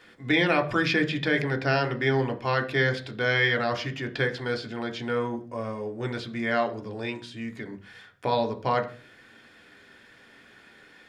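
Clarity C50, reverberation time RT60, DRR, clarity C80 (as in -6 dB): 16.0 dB, 0.45 s, 3.5 dB, 20.0 dB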